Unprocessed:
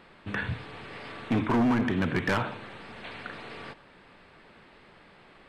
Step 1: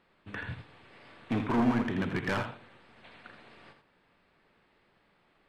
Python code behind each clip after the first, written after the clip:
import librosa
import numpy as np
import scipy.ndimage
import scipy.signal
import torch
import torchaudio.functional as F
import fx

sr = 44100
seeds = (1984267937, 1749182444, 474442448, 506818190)

y = x + 10.0 ** (-6.5 / 20.0) * np.pad(x, (int(82 * sr / 1000.0), 0))[:len(x)]
y = fx.upward_expand(y, sr, threshold_db=-44.0, expansion=1.5)
y = y * librosa.db_to_amplitude(-2.0)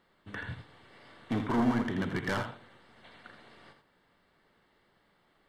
y = fx.high_shelf(x, sr, hz=5200.0, db=5.0)
y = fx.notch(y, sr, hz=2500.0, q=6.2)
y = y * librosa.db_to_amplitude(-1.0)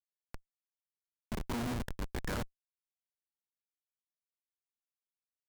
y = fx.env_lowpass(x, sr, base_hz=1700.0, full_db=-29.0)
y = fx.riaa(y, sr, side='recording')
y = fx.schmitt(y, sr, flips_db=-28.5)
y = y * librosa.db_to_amplitude(5.5)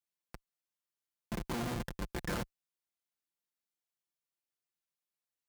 y = scipy.signal.sosfilt(scipy.signal.butter(2, 42.0, 'highpass', fs=sr, output='sos'), x)
y = y + 0.48 * np.pad(y, (int(5.8 * sr / 1000.0), 0))[:len(y)]